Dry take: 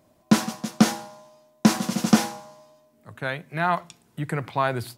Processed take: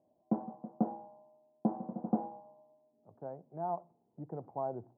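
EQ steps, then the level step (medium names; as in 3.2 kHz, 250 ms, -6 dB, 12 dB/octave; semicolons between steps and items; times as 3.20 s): elliptic low-pass 810 Hz, stop band 80 dB; tilt EQ +2 dB/octave; bass shelf 100 Hz -12 dB; -7.5 dB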